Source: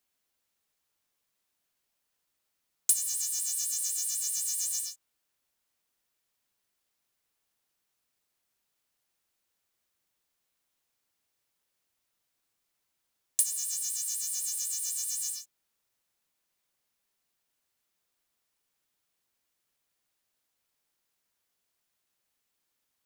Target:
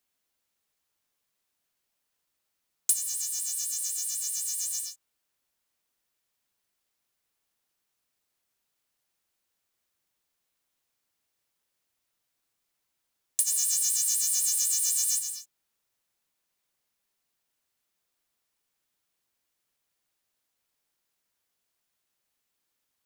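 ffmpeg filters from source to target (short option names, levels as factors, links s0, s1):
-filter_complex "[0:a]asplit=3[s0][s1][s2];[s0]afade=t=out:st=13.46:d=0.02[s3];[s1]acontrast=83,afade=t=in:st=13.46:d=0.02,afade=t=out:st=15.18:d=0.02[s4];[s2]afade=t=in:st=15.18:d=0.02[s5];[s3][s4][s5]amix=inputs=3:normalize=0"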